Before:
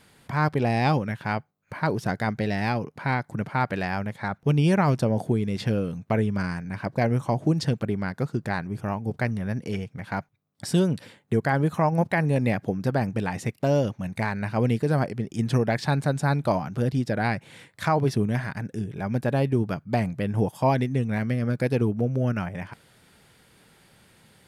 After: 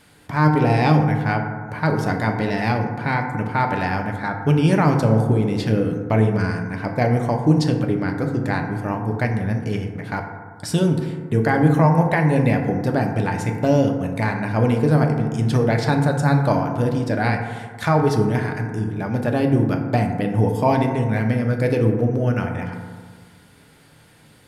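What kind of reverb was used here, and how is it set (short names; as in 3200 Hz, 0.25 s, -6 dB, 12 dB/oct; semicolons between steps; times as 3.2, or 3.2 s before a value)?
FDN reverb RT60 1.7 s, low-frequency decay 1.05×, high-frequency decay 0.3×, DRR 2.5 dB; gain +3 dB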